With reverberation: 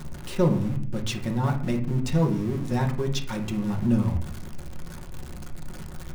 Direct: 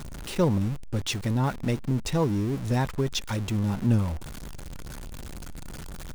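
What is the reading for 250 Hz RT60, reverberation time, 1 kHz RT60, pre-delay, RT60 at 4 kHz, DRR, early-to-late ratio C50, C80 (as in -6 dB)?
0.90 s, 0.50 s, 0.40 s, 5 ms, 0.40 s, 1.0 dB, 10.0 dB, 14.0 dB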